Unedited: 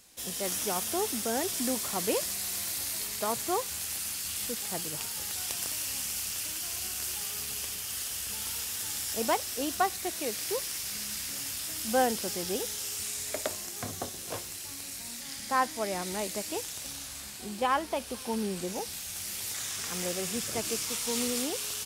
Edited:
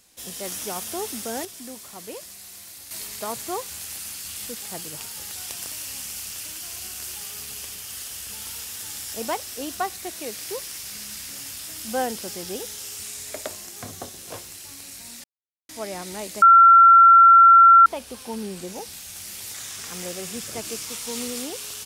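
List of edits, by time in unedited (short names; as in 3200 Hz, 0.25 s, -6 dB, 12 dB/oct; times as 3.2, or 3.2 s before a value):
1.45–2.91 gain -8.5 dB
15.24–15.69 mute
16.42–17.86 bleep 1360 Hz -7.5 dBFS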